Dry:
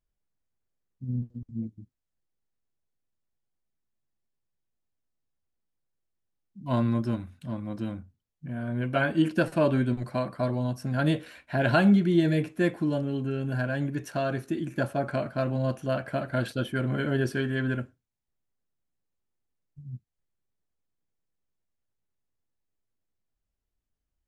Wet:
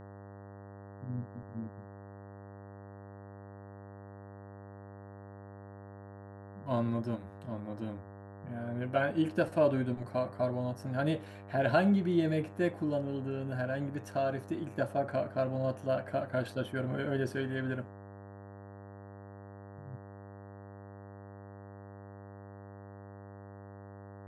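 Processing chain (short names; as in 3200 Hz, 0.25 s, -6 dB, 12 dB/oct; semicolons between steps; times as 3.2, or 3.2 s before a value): buzz 100 Hz, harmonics 19, -42 dBFS -6 dB/oct; bell 610 Hz +6.5 dB 1.2 oct; gain -8 dB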